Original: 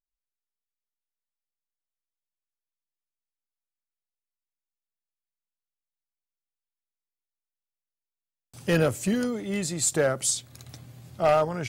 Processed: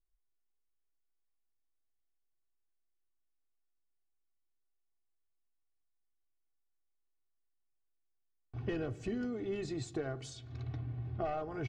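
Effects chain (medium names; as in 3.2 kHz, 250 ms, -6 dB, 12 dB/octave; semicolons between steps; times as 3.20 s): level-controlled noise filter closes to 1.8 kHz, open at -24.5 dBFS; bass shelf 280 Hz +11 dB; comb 2.7 ms, depth 80%; compression 6:1, threshold -32 dBFS, peak gain reduction 17 dB; distance through air 170 m; on a send: reverberation RT60 1.1 s, pre-delay 3 ms, DRR 15 dB; on the sum: trim -3 dB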